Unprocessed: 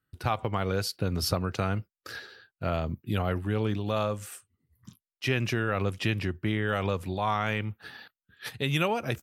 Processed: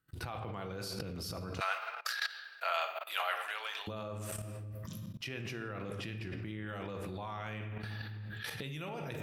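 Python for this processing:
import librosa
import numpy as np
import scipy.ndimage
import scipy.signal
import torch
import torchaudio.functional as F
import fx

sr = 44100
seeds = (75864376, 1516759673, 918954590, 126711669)

y = fx.rattle_buzz(x, sr, strikes_db=-24.0, level_db=-34.0)
y = fx.room_shoebox(y, sr, seeds[0], volume_m3=640.0, walls='mixed', distance_m=0.72)
y = fx.level_steps(y, sr, step_db=20)
y = fx.bessel_highpass(y, sr, hz=1200.0, order=6, at=(1.59, 3.87), fade=0.02)
y = fx.over_compress(y, sr, threshold_db=-49.0, ratio=-1.0)
y = y * 10.0 ** (9.5 / 20.0)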